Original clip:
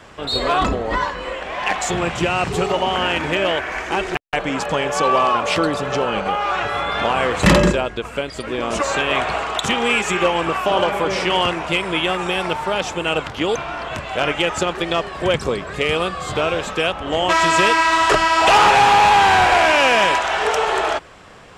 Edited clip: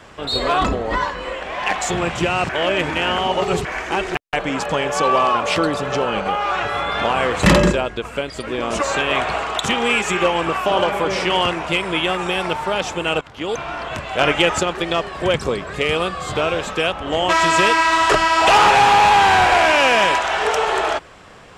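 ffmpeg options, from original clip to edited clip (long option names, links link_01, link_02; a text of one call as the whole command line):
ffmpeg -i in.wav -filter_complex "[0:a]asplit=6[link_01][link_02][link_03][link_04][link_05][link_06];[link_01]atrim=end=2.492[link_07];[link_02]atrim=start=2.488:end=3.652,asetpts=PTS-STARTPTS,areverse[link_08];[link_03]atrim=start=3.648:end=13.21,asetpts=PTS-STARTPTS,afade=type=out:start_time=9.558:duration=0.004:curve=hsin:silence=0.112202[link_09];[link_04]atrim=start=13.21:end=14.192,asetpts=PTS-STARTPTS,afade=type=in:duration=0.47:silence=0.112202[link_10];[link_05]atrim=start=14.188:end=14.602,asetpts=PTS-STARTPTS,volume=3.5dB[link_11];[link_06]atrim=start=14.598[link_12];[link_07][link_08]acrossfade=duration=0.004:curve1=hsin:curve2=hsin[link_13];[link_09][link_10]concat=n=2:v=0:a=1[link_14];[link_13][link_14]acrossfade=duration=0.004:curve1=hsin:curve2=hsin[link_15];[link_15][link_11]acrossfade=duration=0.004:curve1=hsin:curve2=hsin[link_16];[link_16][link_12]acrossfade=duration=0.004:curve1=hsin:curve2=hsin" out.wav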